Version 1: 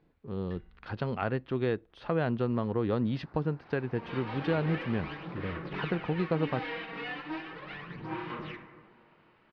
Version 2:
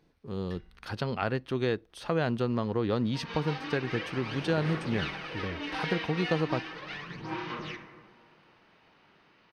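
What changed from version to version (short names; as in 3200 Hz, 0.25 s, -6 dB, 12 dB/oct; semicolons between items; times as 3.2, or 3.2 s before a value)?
second sound: entry -0.80 s; master: remove air absorption 310 m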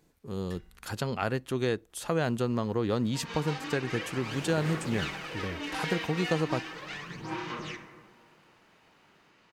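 master: remove polynomial smoothing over 15 samples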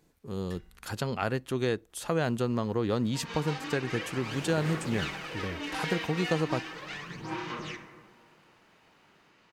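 none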